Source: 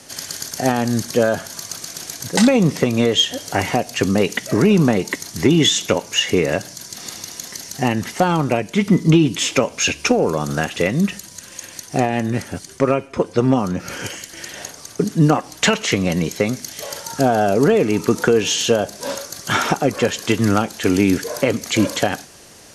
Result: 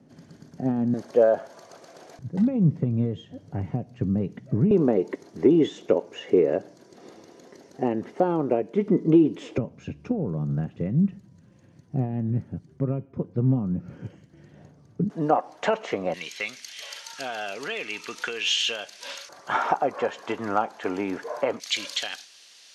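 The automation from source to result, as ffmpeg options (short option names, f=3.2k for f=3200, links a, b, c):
-af "asetnsamples=n=441:p=0,asendcmd='0.94 bandpass f 570;2.19 bandpass f 130;4.71 bandpass f 410;9.58 bandpass f 140;15.1 bandpass f 690;16.14 bandpass f 2800;19.29 bandpass f 860;21.6 bandpass f 3600',bandpass=f=190:t=q:w=1.8:csg=0"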